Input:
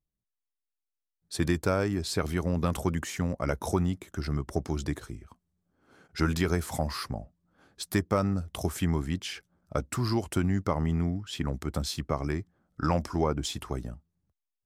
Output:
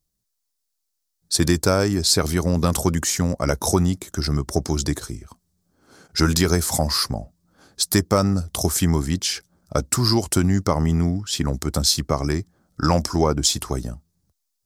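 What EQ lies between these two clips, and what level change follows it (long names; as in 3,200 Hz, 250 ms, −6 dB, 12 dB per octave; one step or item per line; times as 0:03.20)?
high shelf with overshoot 3,700 Hz +8 dB, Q 1.5
+8.0 dB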